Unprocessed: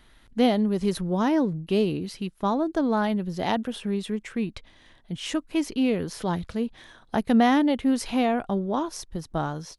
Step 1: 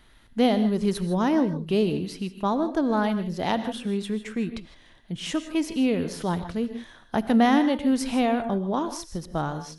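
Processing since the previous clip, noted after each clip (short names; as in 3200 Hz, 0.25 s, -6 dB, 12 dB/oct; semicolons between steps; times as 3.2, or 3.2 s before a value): non-linear reverb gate 0.18 s rising, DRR 10.5 dB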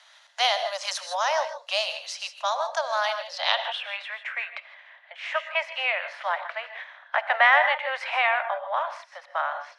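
spectral limiter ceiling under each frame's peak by 14 dB; steep high-pass 570 Hz 96 dB/oct; low-pass sweep 6200 Hz -> 2100 Hz, 3.02–4.14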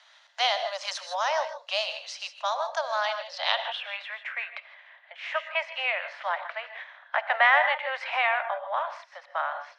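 LPF 6100 Hz 12 dB/oct; gain -2 dB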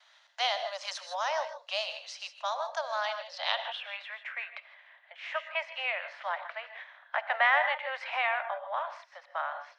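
gate with hold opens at -50 dBFS; gain -4.5 dB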